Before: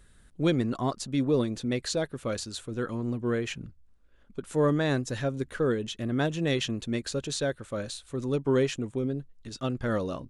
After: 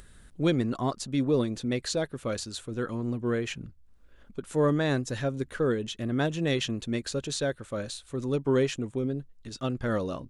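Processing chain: upward compressor, threshold -45 dBFS

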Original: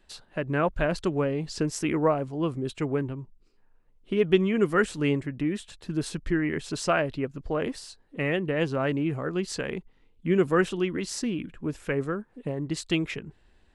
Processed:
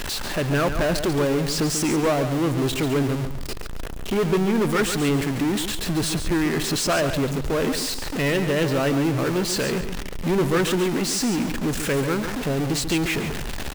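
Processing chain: zero-crossing step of -27 dBFS; sample leveller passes 3; feedback echo 0.14 s, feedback 29%, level -9 dB; on a send at -19.5 dB: reverb, pre-delay 3 ms; on the sum: gain -8 dB

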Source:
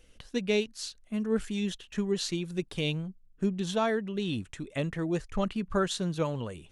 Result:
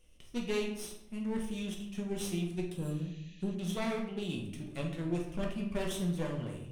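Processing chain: minimum comb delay 0.33 ms; bell 9700 Hz +7 dB 0.47 oct; shoebox room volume 210 m³, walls mixed, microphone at 1 m; spectral repair 2.79–3.52, 1700–7300 Hz after; gain -8.5 dB

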